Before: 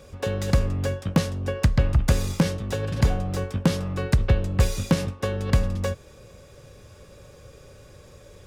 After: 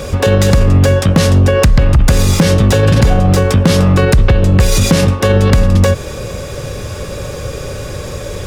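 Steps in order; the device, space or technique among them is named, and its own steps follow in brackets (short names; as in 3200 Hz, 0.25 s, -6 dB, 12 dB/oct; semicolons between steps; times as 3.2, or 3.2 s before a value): loud club master (compressor 2:1, threshold -22 dBFS, peak gain reduction 5.5 dB; hard clip -15 dBFS, distortion -24 dB; maximiser +25.5 dB); gain -1 dB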